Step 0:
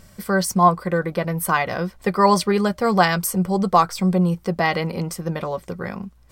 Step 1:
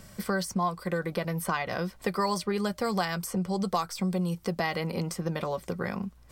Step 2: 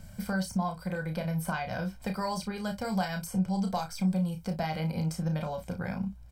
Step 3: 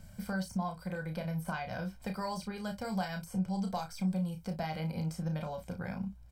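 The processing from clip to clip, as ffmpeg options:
-filter_complex "[0:a]acrossover=split=95|2800|7700[s0][s1][s2][s3];[s0]acompressor=threshold=0.002:ratio=4[s4];[s1]acompressor=threshold=0.0398:ratio=4[s5];[s2]acompressor=threshold=0.01:ratio=4[s6];[s3]acompressor=threshold=0.00501:ratio=4[s7];[s4][s5][s6][s7]amix=inputs=4:normalize=0"
-filter_complex "[0:a]lowshelf=f=270:g=7.5,aecho=1:1:1.3:0.67,asplit=2[s0][s1];[s1]aecho=0:1:32|57:0.501|0.158[s2];[s0][s2]amix=inputs=2:normalize=0,volume=0.447"
-af "deesser=0.9,volume=0.596"

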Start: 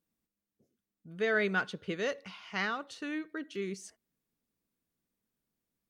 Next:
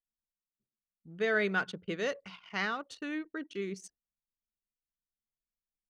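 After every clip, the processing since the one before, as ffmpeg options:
-af "bandreject=f=60:t=h:w=6,bandreject=f=120:t=h:w=6,bandreject=f=180:t=h:w=6,anlmdn=0.01"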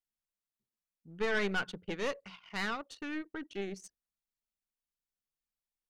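-af "aeval=exprs='(tanh(25.1*val(0)+0.75)-tanh(0.75))/25.1':c=same,volume=1.33"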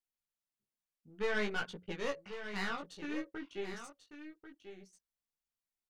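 -af "flanger=delay=17:depth=4:speed=0.53,aecho=1:1:1091:0.299"

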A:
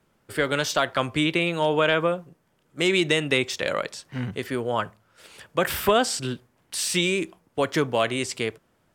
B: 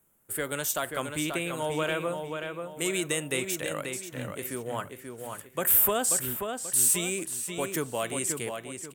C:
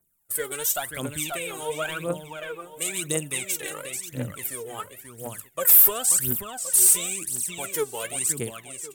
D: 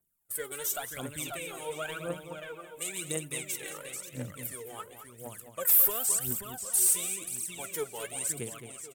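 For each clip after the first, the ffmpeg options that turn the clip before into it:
-filter_complex "[0:a]equalizer=f=7500:t=o:w=2.1:g=-3,aexciter=amount=11.9:drive=5:freq=7100,asplit=2[s0][s1];[s1]adelay=535,lowpass=f=4600:p=1,volume=0.531,asplit=2[s2][s3];[s3]adelay=535,lowpass=f=4600:p=1,volume=0.36,asplit=2[s4][s5];[s5]adelay=535,lowpass=f=4600:p=1,volume=0.36,asplit=2[s6][s7];[s7]adelay=535,lowpass=f=4600:p=1,volume=0.36[s8];[s2][s4][s6][s8]amix=inputs=4:normalize=0[s9];[s0][s9]amix=inputs=2:normalize=0,volume=0.376"
-af "agate=range=0.355:threshold=0.00447:ratio=16:detection=peak,highshelf=f=5700:g=8.5,aphaser=in_gain=1:out_gain=1:delay=2.7:decay=0.77:speed=0.95:type=triangular,volume=0.596"
-filter_complex "[0:a]asplit=2[s0][s1];[s1]adelay=215.7,volume=0.355,highshelf=f=4000:g=-4.85[s2];[s0][s2]amix=inputs=2:normalize=0,volume=0.422"

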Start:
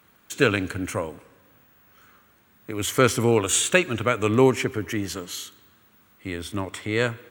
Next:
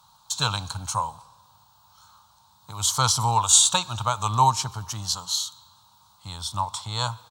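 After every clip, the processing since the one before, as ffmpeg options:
-af "firequalizer=gain_entry='entry(140,0);entry(270,-21);entry(390,-24);entry(890,14);entry(1900,-22);entry(3900,12);entry(15000,-5)':delay=0.05:min_phase=1"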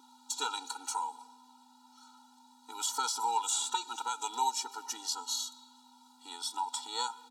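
-filter_complex "[0:a]aeval=exprs='val(0)+0.00447*(sin(2*PI*50*n/s)+sin(2*PI*2*50*n/s)/2+sin(2*PI*3*50*n/s)/3+sin(2*PI*4*50*n/s)/4+sin(2*PI*5*50*n/s)/5)':c=same,acrossover=split=370|2100|4200[s0][s1][s2][s3];[s0]acompressor=threshold=0.00794:ratio=4[s4];[s1]acompressor=threshold=0.0355:ratio=4[s5];[s2]acompressor=threshold=0.00708:ratio=4[s6];[s3]acompressor=threshold=0.0282:ratio=4[s7];[s4][s5][s6][s7]amix=inputs=4:normalize=0,afftfilt=real='re*eq(mod(floor(b*sr/1024/250),2),1)':imag='im*eq(mod(floor(b*sr/1024/250),2),1)':win_size=1024:overlap=0.75"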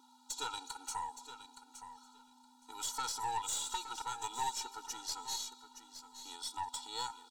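-filter_complex "[0:a]aeval=exprs='(tanh(17.8*val(0)+0.35)-tanh(0.35))/17.8':c=same,asplit=2[s0][s1];[s1]aecho=0:1:868|1736:0.266|0.0426[s2];[s0][s2]amix=inputs=2:normalize=0,volume=0.668"

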